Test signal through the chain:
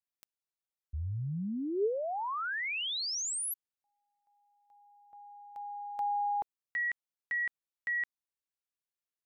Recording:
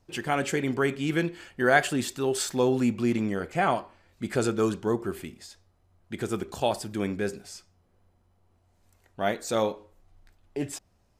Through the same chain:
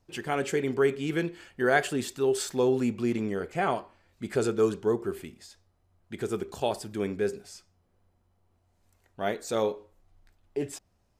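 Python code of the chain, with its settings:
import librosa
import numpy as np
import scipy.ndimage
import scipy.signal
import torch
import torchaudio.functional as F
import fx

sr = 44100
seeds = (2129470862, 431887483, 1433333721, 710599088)

y = fx.dynamic_eq(x, sr, hz=420.0, q=5.0, threshold_db=-44.0, ratio=4.0, max_db=8)
y = y * librosa.db_to_amplitude(-3.5)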